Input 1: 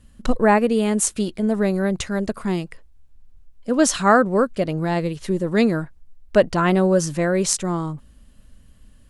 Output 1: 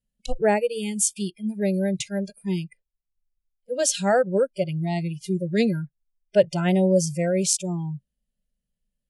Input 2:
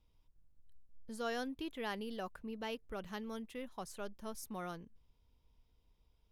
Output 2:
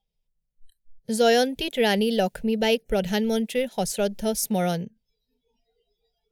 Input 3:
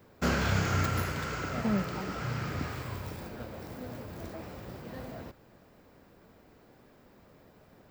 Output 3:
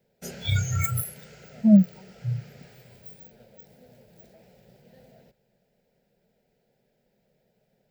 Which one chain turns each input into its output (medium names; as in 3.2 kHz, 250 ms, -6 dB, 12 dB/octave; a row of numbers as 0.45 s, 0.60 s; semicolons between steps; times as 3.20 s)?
static phaser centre 300 Hz, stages 6; Chebyshev shaper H 5 -35 dB, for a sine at -1.5 dBFS; spectral noise reduction 27 dB; normalise loudness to -24 LUFS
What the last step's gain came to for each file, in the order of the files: -1.0 dB, +21.5 dB, +16.5 dB